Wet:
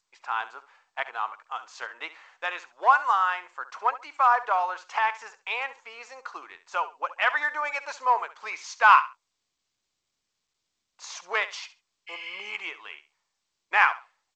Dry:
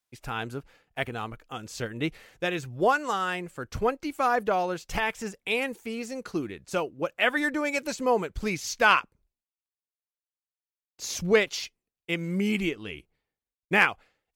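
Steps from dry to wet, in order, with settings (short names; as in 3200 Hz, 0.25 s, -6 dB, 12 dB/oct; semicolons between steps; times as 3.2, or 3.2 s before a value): high shelf 2900 Hz -11 dB; spectral repair 12.1–12.43, 1300–5400 Hz after; in parallel at -6 dB: hard clip -19.5 dBFS, distortion -13 dB; on the sum: ladder high-pass 860 Hz, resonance 55%; on a send: feedback echo 68 ms, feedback 20%, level -15 dB; on the sum: gain +8.5 dB; G.722 64 kbps 16000 Hz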